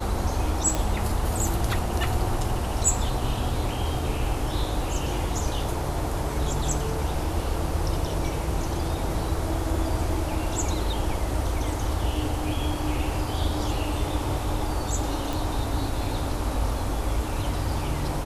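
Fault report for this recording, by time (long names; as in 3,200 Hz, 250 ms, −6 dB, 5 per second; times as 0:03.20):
0:00.75: click
0:15.33: click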